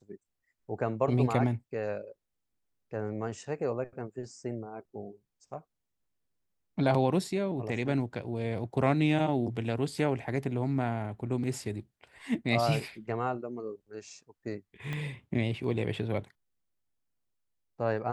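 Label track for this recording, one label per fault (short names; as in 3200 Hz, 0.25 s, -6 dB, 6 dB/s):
14.930000	14.930000	pop -23 dBFS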